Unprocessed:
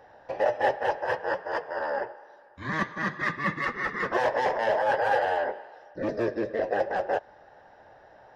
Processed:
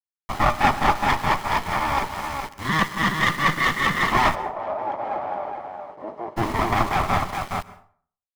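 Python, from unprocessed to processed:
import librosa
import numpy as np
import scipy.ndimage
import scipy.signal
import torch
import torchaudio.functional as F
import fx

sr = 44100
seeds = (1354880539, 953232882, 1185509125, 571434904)

y = fx.lower_of_two(x, sr, delay_ms=0.98)
y = y + 10.0 ** (-5.5 / 20.0) * np.pad(y, (int(418 * sr / 1000.0), 0))[:len(y)]
y = np.where(np.abs(y) >= 10.0 ** (-42.0 / 20.0), y, 0.0)
y = fx.bandpass_q(y, sr, hz=560.0, q=3.4, at=(4.34, 6.36), fade=0.02)
y = fx.rev_plate(y, sr, seeds[0], rt60_s=0.5, hf_ratio=0.65, predelay_ms=110, drr_db=17.5)
y = y * librosa.db_to_amplitude(8.5)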